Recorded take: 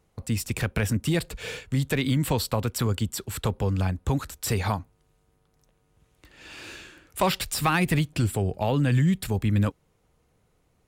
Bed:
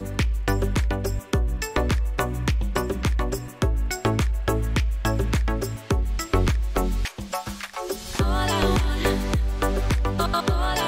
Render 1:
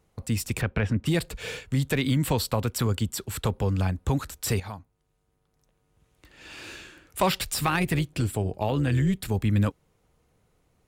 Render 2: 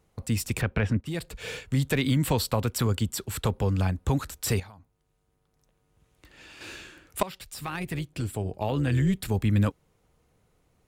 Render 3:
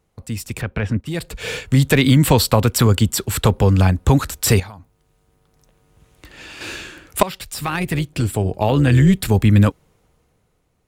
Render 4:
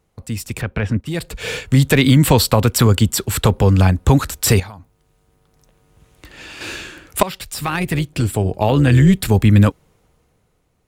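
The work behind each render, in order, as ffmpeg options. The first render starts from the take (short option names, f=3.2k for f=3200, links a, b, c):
-filter_complex "[0:a]asplit=3[a][b][c];[a]afade=t=out:st=0.6:d=0.02[d];[b]lowpass=3k,afade=t=in:st=0.6:d=0.02,afade=t=out:st=1.05:d=0.02[e];[c]afade=t=in:st=1.05:d=0.02[f];[d][e][f]amix=inputs=3:normalize=0,asplit=3[g][h][i];[g]afade=t=out:st=7.63:d=0.02[j];[h]tremolo=f=210:d=0.462,afade=t=in:st=7.63:d=0.02,afade=t=out:st=9.29:d=0.02[k];[i]afade=t=in:st=9.29:d=0.02[l];[j][k][l]amix=inputs=3:normalize=0,asplit=2[m][n];[m]atrim=end=4.6,asetpts=PTS-STARTPTS,afade=t=out:st=4.596:d=0.004:c=hsin:silence=0.223872[o];[n]atrim=start=4.6,asetpts=PTS-STARTPTS,afade=t=in:d=1.91:silence=0.223872[p];[o][p]concat=n=2:v=0:a=1"
-filter_complex "[0:a]asettb=1/sr,asplit=3[a][b][c];[a]atrim=end=4.634[d];[b]atrim=start=4.63:end=6.61,asetpts=PTS-STARTPTS,afade=t=in:d=0.004:c=qsin,afade=t=out:st=1.976:d=0.004:c=qsin,acompressor=threshold=-45dB:ratio=5:attack=3.2:release=140:knee=1:detection=peak[e];[c]atrim=start=6.606[f];[d][e]acrossfade=d=0.004:c1=hsin:c2=qsin[g];[g][f]acrossfade=d=0.004:c1=qsin:c2=hsin,asplit=3[h][i][j];[h]atrim=end=1.01,asetpts=PTS-STARTPTS,afade=t=out:st=1.006:d=0.004:c=hsin:silence=0.237137[k];[i]atrim=start=1.01:end=7.23,asetpts=PTS-STARTPTS,afade=t=in:d=0.59:silence=0.237137,afade=t=out:st=6.216:d=0.004:c=hsin:silence=0.11885[l];[j]atrim=start=7.23,asetpts=PTS-STARTPTS,afade=t=in:d=1.87:silence=0.11885[m];[k][l][m]concat=n=3:v=0:a=1"
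-af "dynaudnorm=f=260:g=9:m=14dB"
-af "volume=1.5dB,alimiter=limit=-2dB:level=0:latency=1"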